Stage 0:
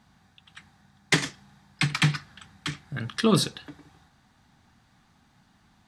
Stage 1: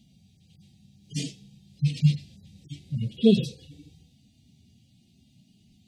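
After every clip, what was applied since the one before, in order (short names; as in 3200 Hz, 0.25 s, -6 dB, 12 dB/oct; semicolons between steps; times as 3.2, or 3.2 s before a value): median-filter separation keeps harmonic; Chebyshev band-stop 540–2700 Hz, order 3; gain +5.5 dB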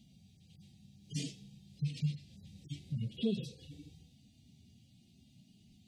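compressor 2.5:1, threshold -33 dBFS, peak gain reduction 13.5 dB; gain -3 dB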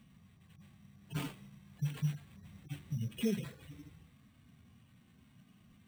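sample-rate reducer 5800 Hz, jitter 0%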